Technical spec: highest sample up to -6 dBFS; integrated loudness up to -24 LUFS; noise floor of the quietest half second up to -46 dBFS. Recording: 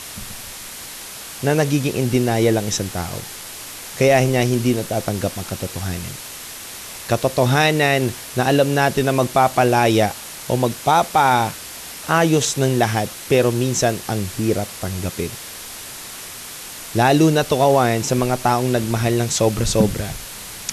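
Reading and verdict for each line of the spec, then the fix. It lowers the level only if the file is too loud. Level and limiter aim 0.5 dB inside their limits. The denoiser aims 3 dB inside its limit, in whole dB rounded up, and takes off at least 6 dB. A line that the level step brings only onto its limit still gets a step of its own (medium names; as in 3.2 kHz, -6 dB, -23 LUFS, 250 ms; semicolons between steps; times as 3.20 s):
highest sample -4.5 dBFS: fail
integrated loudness -18.5 LUFS: fail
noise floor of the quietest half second -34 dBFS: fail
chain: noise reduction 9 dB, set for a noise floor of -34 dBFS; trim -6 dB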